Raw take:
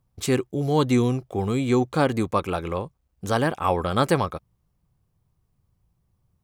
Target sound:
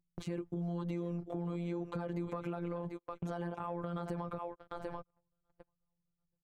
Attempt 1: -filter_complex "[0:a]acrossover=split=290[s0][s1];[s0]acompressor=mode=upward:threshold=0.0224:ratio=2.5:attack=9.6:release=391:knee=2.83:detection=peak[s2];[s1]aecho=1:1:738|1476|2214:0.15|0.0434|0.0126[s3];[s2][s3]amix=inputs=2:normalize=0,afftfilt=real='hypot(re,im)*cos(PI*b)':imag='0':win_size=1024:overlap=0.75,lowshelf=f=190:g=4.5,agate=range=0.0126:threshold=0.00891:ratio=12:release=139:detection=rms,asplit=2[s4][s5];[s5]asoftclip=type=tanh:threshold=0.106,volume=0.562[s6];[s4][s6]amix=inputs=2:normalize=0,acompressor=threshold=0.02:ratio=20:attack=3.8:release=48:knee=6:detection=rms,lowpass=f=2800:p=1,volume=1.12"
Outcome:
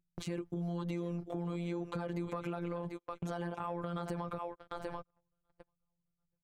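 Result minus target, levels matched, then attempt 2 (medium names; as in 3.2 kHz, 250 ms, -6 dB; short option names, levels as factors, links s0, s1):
2 kHz band +2.5 dB
-filter_complex "[0:a]acrossover=split=290[s0][s1];[s0]acompressor=mode=upward:threshold=0.0224:ratio=2.5:attack=9.6:release=391:knee=2.83:detection=peak[s2];[s1]aecho=1:1:738|1476|2214:0.15|0.0434|0.0126[s3];[s2][s3]amix=inputs=2:normalize=0,afftfilt=real='hypot(re,im)*cos(PI*b)':imag='0':win_size=1024:overlap=0.75,lowshelf=f=190:g=4.5,agate=range=0.0126:threshold=0.00891:ratio=12:release=139:detection=rms,asplit=2[s4][s5];[s5]asoftclip=type=tanh:threshold=0.106,volume=0.562[s6];[s4][s6]amix=inputs=2:normalize=0,acompressor=threshold=0.02:ratio=20:attack=3.8:release=48:knee=6:detection=rms,lowpass=f=1300:p=1,volume=1.12"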